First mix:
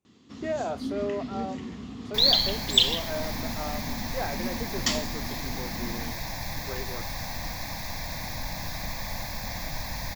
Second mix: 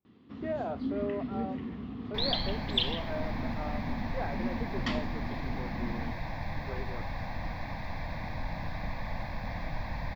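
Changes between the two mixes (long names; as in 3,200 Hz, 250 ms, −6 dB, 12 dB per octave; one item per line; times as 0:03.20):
speech −3.0 dB
master: add high-frequency loss of the air 400 metres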